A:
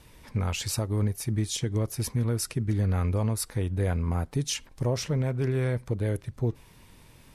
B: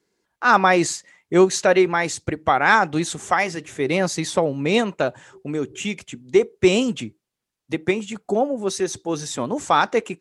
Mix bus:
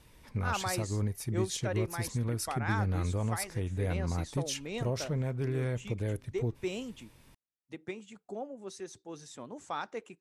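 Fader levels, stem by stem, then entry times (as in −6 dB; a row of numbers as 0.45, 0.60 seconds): −5.5, −19.5 decibels; 0.00, 0.00 seconds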